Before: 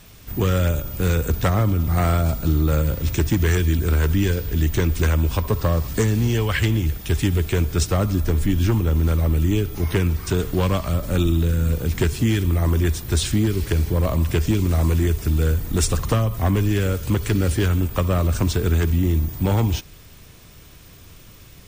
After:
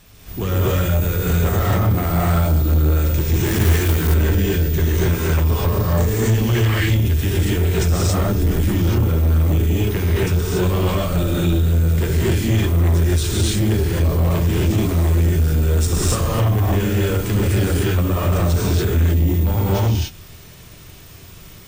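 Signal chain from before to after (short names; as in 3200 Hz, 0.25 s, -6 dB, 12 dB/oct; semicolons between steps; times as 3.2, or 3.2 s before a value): non-linear reverb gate 0.31 s rising, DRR -7 dB; soft clip -8 dBFS, distortion -14 dB; 3.46–4.14 companded quantiser 4-bit; gain -3 dB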